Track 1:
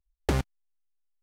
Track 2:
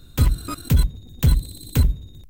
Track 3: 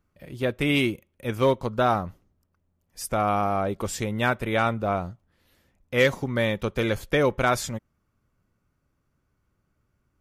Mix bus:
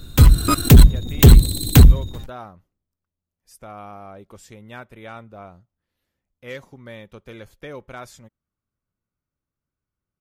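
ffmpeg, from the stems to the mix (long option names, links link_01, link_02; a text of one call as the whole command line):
ffmpeg -i stem1.wav -i stem2.wav -i stem3.wav -filter_complex "[0:a]aecho=1:1:6.4:0.76,adelay=1850,volume=-19.5dB[link_01];[1:a]dynaudnorm=framelen=110:gausssize=7:maxgain=11.5dB,aeval=exprs='0.944*sin(PI/2*2*val(0)/0.944)':channel_layout=same,volume=-2dB[link_02];[2:a]adelay=500,volume=-14.5dB[link_03];[link_01][link_02][link_03]amix=inputs=3:normalize=0" out.wav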